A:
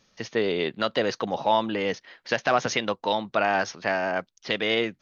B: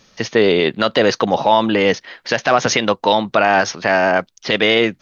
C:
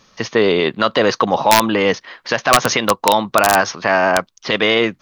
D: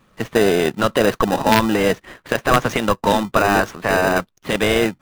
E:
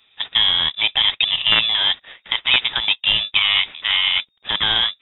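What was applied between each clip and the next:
loudness maximiser +13 dB; trim -1 dB
peaking EQ 1.1 kHz +8 dB 0.46 oct; integer overflow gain 0 dB; trim -1 dB
median filter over 9 samples; in parallel at -4 dB: sample-and-hold 40×; on the sum: trim -3.5 dB
frequency inversion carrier 3.7 kHz; trim -1.5 dB

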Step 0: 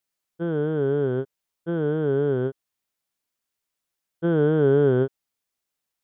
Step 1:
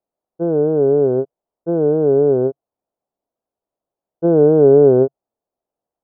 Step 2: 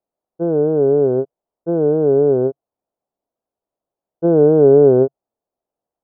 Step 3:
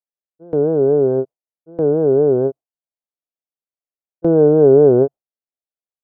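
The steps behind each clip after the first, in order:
FFT filter 140 Hz 0 dB, 680 Hz +11 dB, 2.1 kHz -20 dB; trim +2 dB
no audible change
gate with hold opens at -10 dBFS; vibrato 4.6 Hz 57 cents

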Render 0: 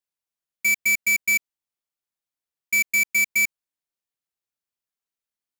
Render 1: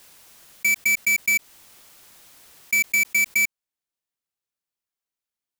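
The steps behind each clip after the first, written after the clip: swell ahead of each attack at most 27 dB/s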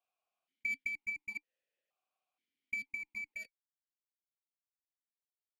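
flange 0.67 Hz, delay 4.3 ms, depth 1.1 ms, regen -65%; Chebyshev shaper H 3 -6 dB, 4 -16 dB, 5 -22 dB, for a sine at -18 dBFS; stepped vowel filter 2.1 Hz; trim +1 dB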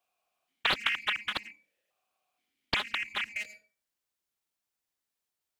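reverberation RT60 0.40 s, pre-delay 77 ms, DRR 8.5 dB; loudspeaker Doppler distortion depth 0.78 ms; trim +8.5 dB

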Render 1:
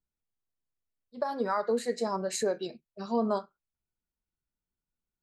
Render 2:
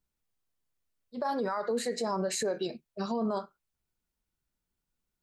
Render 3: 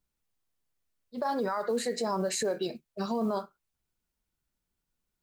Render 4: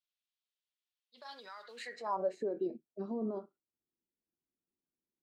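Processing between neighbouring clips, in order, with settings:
peak limiter -28.5 dBFS, peak gain reduction 11.5 dB; trim +5.5 dB
modulation noise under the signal 33 dB; trim +1 dB
band-pass sweep 3.4 kHz -> 320 Hz, 1.70–2.44 s

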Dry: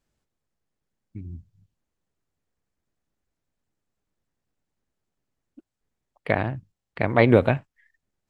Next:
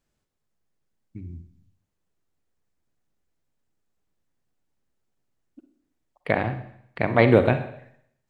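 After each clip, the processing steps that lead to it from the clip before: hum notches 50/100 Hz; reverberation RT60 0.70 s, pre-delay 42 ms, DRR 9 dB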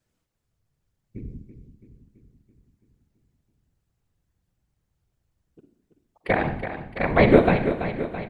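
whisper effect; on a send: feedback delay 332 ms, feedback 60%, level -10 dB; on the sum: trim +1 dB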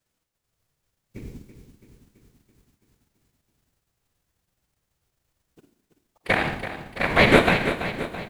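formants flattened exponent 0.6; dynamic bell 2.2 kHz, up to +5 dB, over -33 dBFS, Q 0.83; trim -2 dB

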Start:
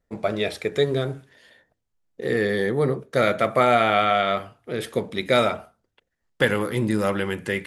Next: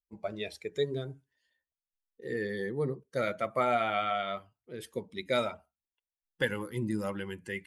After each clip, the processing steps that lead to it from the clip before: expander on every frequency bin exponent 1.5; trim -8 dB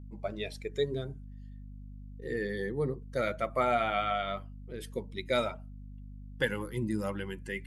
hum 50 Hz, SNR 11 dB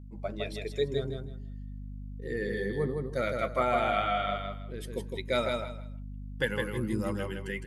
feedback delay 160 ms, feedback 22%, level -4 dB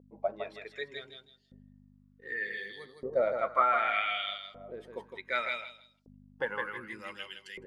LFO band-pass saw up 0.66 Hz 490–5100 Hz; trim +7 dB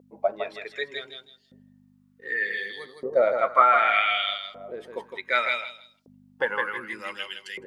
high-pass 340 Hz 6 dB/octave; trim +8.5 dB

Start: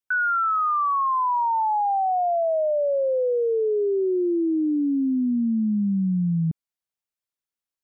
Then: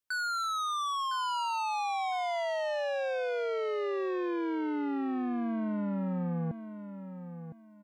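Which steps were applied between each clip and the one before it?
saturation -31.5 dBFS, distortion -10 dB; on a send: feedback delay 1009 ms, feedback 24%, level -10.5 dB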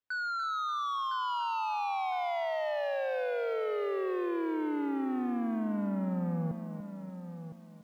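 distance through air 200 m; bit-crushed delay 291 ms, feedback 35%, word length 10-bit, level -10 dB

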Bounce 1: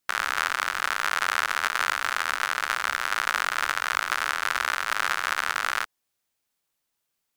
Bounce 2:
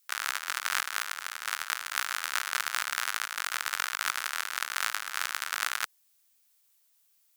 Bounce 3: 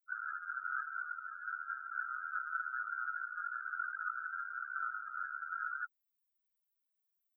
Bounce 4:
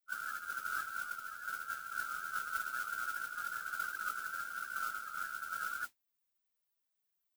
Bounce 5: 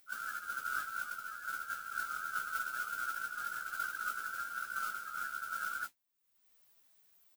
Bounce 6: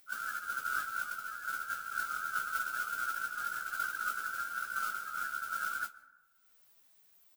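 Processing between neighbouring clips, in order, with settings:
compressor with a negative ratio -31 dBFS, ratio -0.5; tilt EQ +3.5 dB/octave; trim -5 dB
resonant low shelf 750 Hz -7.5 dB, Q 1.5; loudest bins only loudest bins 4; trim +1.5 dB
modulation noise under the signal 11 dB
upward compressor, threshold -53 dBFS; doubling 15 ms -7 dB
plate-style reverb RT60 1.2 s, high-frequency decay 0.35×, pre-delay 115 ms, DRR 19 dB; trim +2.5 dB

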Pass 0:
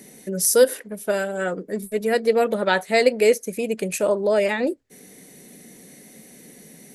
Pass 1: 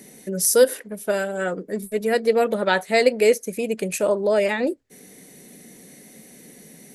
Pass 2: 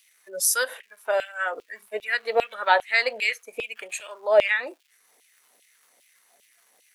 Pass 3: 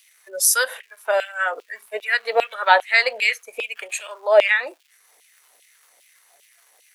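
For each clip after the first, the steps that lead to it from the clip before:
no audible change
crackle 540 per s -38 dBFS; spectral noise reduction 13 dB; LFO high-pass saw down 2.5 Hz 580–3000 Hz; trim -2 dB
high-pass 480 Hz 12 dB/octave; trim +5 dB

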